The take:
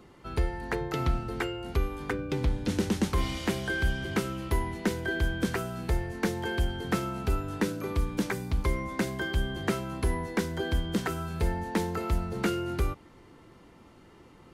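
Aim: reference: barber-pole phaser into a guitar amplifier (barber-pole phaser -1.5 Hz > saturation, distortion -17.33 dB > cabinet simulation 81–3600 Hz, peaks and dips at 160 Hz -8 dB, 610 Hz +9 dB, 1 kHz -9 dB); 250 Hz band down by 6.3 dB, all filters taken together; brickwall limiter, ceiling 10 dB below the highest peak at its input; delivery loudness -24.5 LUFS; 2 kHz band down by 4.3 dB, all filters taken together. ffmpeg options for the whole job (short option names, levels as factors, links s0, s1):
-filter_complex "[0:a]equalizer=f=250:t=o:g=-7.5,equalizer=f=2000:t=o:g=-5,alimiter=level_in=1.33:limit=0.0631:level=0:latency=1,volume=0.75,asplit=2[s0][s1];[s1]afreqshift=-1.5[s2];[s0][s2]amix=inputs=2:normalize=1,asoftclip=threshold=0.0266,highpass=81,equalizer=f=160:t=q:w=4:g=-8,equalizer=f=610:t=q:w=4:g=9,equalizer=f=1000:t=q:w=4:g=-9,lowpass=f=3600:w=0.5412,lowpass=f=3600:w=1.3066,volume=8.41"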